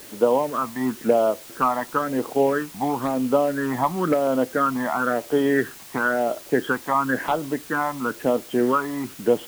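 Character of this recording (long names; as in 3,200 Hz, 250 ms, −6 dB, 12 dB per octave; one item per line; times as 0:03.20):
phaser sweep stages 12, 0.98 Hz, lowest notch 460–1,700 Hz
a quantiser's noise floor 8 bits, dither triangular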